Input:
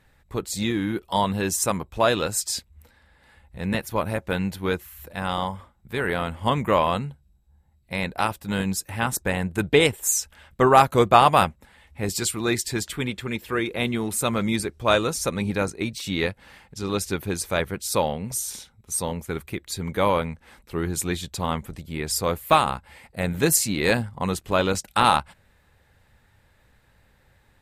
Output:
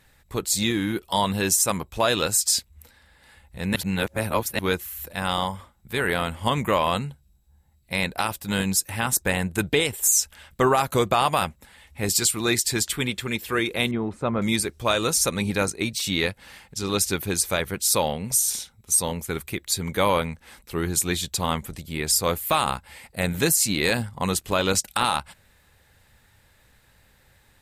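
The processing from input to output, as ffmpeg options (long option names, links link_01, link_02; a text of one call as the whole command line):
ffmpeg -i in.wav -filter_complex "[0:a]asettb=1/sr,asplit=3[link_01][link_02][link_03];[link_01]atrim=end=13.914[link_04];[link_02]atrim=start=13.91:end=14.42,asetpts=PTS-STARTPTS,afade=type=in:duration=0.004:curve=qsin,afade=type=out:start_time=0.506:duration=0.004:curve=qsin,lowpass=1200[link_05];[link_03]atrim=start=14.416[link_06];[link_04][link_05]acrossfade=duration=0.004:curve1=hsin:curve2=qsin[link_07];[link_07][link_06]acrossfade=duration=0.004:curve1=qsin:curve2=hsin,asplit=3[link_08][link_09][link_10];[link_08]atrim=end=3.762[link_11];[link_09]atrim=start=3.758:end=4.592,asetpts=PTS-STARTPTS,areverse[link_12];[link_10]atrim=start=4.588[link_13];[link_11][link_12]acrossfade=duration=0.004:curve1=hsin:curve2=hsin[link_14];[link_14][link_13]acrossfade=duration=0.004:curve1=hsin:curve2=hsin,highshelf=frequency=3000:gain=9.5,alimiter=limit=-9.5dB:level=0:latency=1:release=95" out.wav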